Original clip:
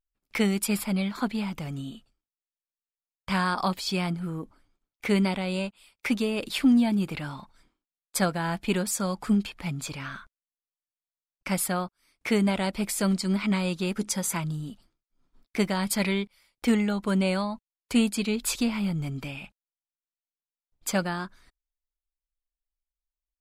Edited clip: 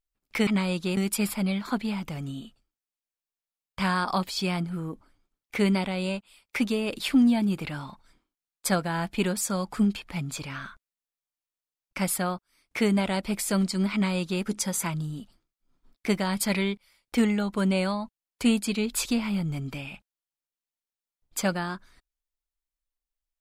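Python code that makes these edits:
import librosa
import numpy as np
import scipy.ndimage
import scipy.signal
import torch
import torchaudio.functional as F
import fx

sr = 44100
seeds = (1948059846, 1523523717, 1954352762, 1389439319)

y = fx.edit(x, sr, fx.duplicate(start_s=13.43, length_s=0.5, to_s=0.47), tone=tone)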